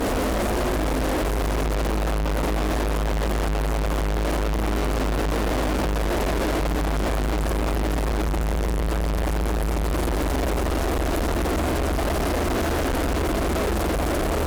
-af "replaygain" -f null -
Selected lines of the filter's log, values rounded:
track_gain = +8.9 dB
track_peak = 0.086